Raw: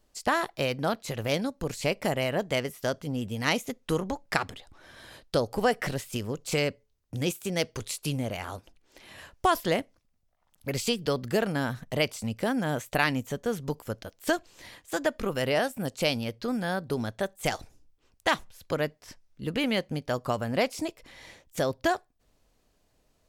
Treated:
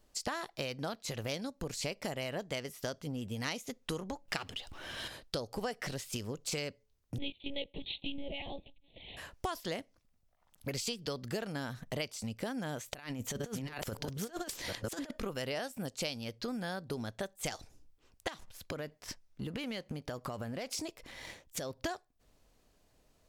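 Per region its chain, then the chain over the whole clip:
4.28–5.08 s: companding laws mixed up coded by mu + peaking EQ 2.9 kHz +10.5 dB 0.27 oct
7.18–9.17 s: monotone LPC vocoder at 8 kHz 280 Hz + Butterworth band-stop 1.4 kHz, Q 0.75 + treble shelf 2.7 kHz +11.5 dB
12.88–15.11 s: chunks repeated in reverse 502 ms, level -3.5 dB + compressor with a negative ratio -33 dBFS, ratio -0.5
18.28–21.82 s: waveshaping leveller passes 1 + compression 5:1, threshold -33 dBFS
whole clip: dynamic bell 5.2 kHz, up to +7 dB, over -49 dBFS, Q 0.95; compression 4:1, threshold -36 dBFS

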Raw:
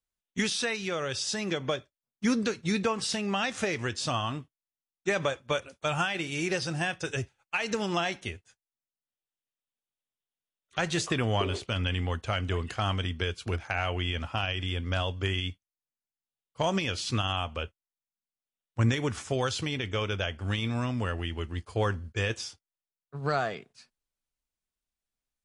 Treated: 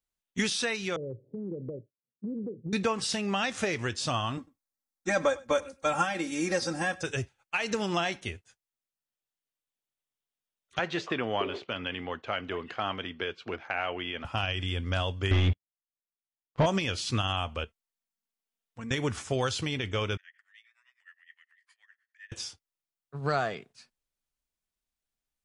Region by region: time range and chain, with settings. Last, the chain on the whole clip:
0.96–2.73 s: Chebyshev band-pass 110–520 Hz, order 4 + compression, threshold -32 dBFS
4.37–7.03 s: peaking EQ 2.9 kHz -11 dB 0.59 oct + comb 3.7 ms, depth 91% + delay 100 ms -22.5 dB
10.79–14.25 s: band-pass 250–3700 Hz + distance through air 62 m
15.31–16.66 s: waveshaping leveller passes 5 + tape spacing loss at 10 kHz 36 dB
17.64–18.91 s: comb 4.4 ms, depth 71% + compression 2:1, threshold -48 dBFS
20.17–22.32 s: compression 16:1, threshold -38 dBFS + ladder high-pass 1.8 kHz, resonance 90% + tremolo 9.7 Hz, depth 92%
whole clip: none

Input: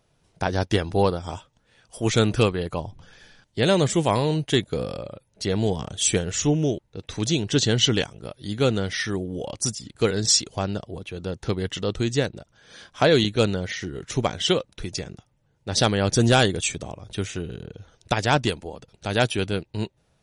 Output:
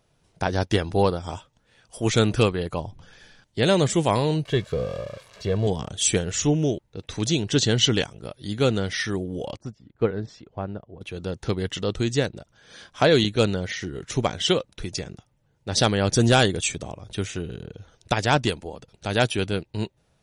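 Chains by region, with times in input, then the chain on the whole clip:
4.45–5.67 s: zero-crossing glitches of -20.5 dBFS + tape spacing loss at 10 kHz 30 dB + comb 1.8 ms, depth 59%
9.57–11.01 s: low-pass 1.5 kHz + upward expansion, over -34 dBFS
whole clip: none

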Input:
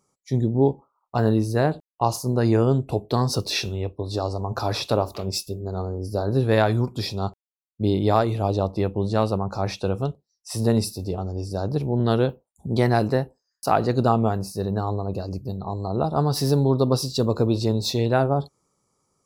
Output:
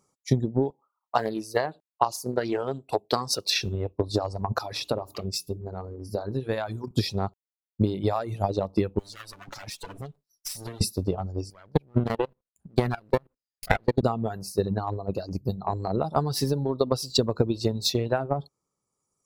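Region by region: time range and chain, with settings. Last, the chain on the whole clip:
0.70–3.61 s: high-pass 590 Hz 6 dB/octave + loudspeaker Doppler distortion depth 0.14 ms
4.58–6.91 s: hum notches 60/120/180/240/300/360/420 Hz + compression 2:1, threshold -32 dBFS
8.99–10.81 s: comb filter that takes the minimum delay 6.9 ms + treble shelf 2.6 kHz +11.5 dB + compression 4:1, threshold -38 dBFS
11.50–14.03 s: comb filter that takes the minimum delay 0.43 ms + dynamic bell 6.3 kHz, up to -7 dB, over -50 dBFS, Q 1.1 + level held to a coarse grid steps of 22 dB
whole clip: reverb removal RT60 1.7 s; compression 6:1, threshold -24 dBFS; transient shaper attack +8 dB, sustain 0 dB

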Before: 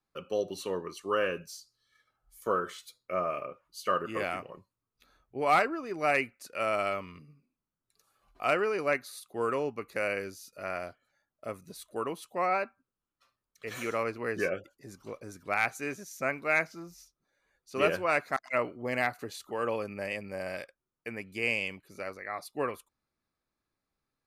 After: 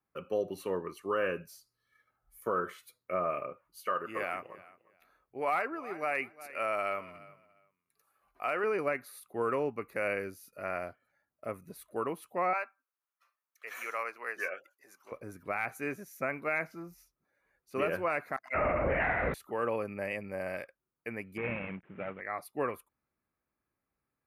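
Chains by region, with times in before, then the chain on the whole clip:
3.80–8.64 s: bass shelf 320 Hz -11 dB + feedback delay 351 ms, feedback 19%, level -20.5 dB
12.53–15.12 s: high-pass 880 Hz + peaking EQ 6.2 kHz +5.5 dB 0.4 oct
18.54–19.34 s: peaking EQ 780 Hz +4.5 dB 1.8 oct + flutter echo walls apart 4.5 m, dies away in 1 s + LPC vocoder at 8 kHz whisper
21.37–22.21 s: CVSD coder 16 kbps + peaking EQ 180 Hz +8.5 dB 0.69 oct
whole clip: high-pass 40 Hz; high-order bell 5.1 kHz -11 dB; peak limiter -21 dBFS

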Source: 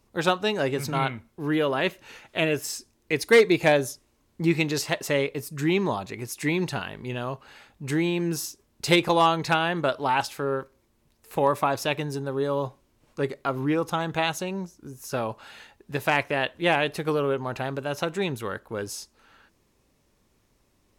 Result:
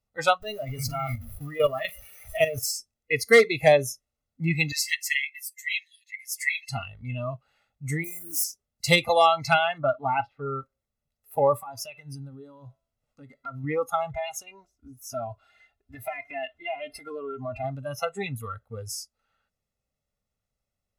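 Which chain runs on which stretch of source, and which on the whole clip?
0.42–2.71 s: jump at every zero crossing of -28.5 dBFS + comb 1.7 ms, depth 34% + level held to a coarse grid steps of 10 dB
4.72–6.69 s: brick-wall FIR high-pass 1.7 kHz + comb 7.2 ms, depth 71%
8.04–8.44 s: zero-crossing glitches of -23.5 dBFS + peaking EQ 2.1 kHz -4 dB 2.2 oct + static phaser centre 660 Hz, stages 8
9.78–10.56 s: distance through air 360 m + tape noise reduction on one side only decoder only
11.60–13.64 s: de-hum 332.3 Hz, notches 14 + compression 5:1, threshold -31 dBFS
14.14–17.64 s: treble shelf 5.4 kHz -6 dB + comb 2.9 ms, depth 84% + compression 8:1, threshold -27 dBFS
whole clip: spectral noise reduction 21 dB; comb 1.5 ms, depth 75%

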